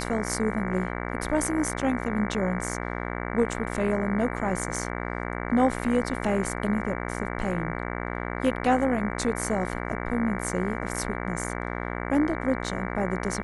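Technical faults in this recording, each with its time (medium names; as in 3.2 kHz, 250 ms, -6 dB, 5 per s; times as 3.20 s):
buzz 60 Hz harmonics 38 -32 dBFS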